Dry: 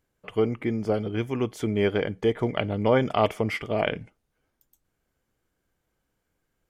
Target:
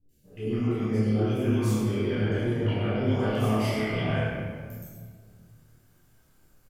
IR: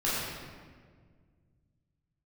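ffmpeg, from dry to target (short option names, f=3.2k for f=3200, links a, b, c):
-filter_complex "[0:a]aemphasis=mode=production:type=cd,areverse,acompressor=threshold=-36dB:ratio=6,areverse,asplit=2[a][b];[b]adelay=28,volume=-3dB[c];[a][c]amix=inputs=2:normalize=0,acrossover=split=500|2300[d][e][f];[f]adelay=90[g];[e]adelay=250[h];[d][h][g]amix=inputs=3:normalize=0[i];[1:a]atrim=start_sample=2205[j];[i][j]afir=irnorm=-1:irlink=0"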